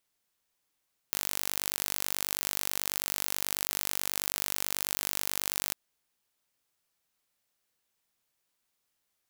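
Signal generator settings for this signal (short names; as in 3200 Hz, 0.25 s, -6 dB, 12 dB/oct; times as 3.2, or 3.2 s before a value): pulse train 49.2/s, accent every 0, -4 dBFS 4.61 s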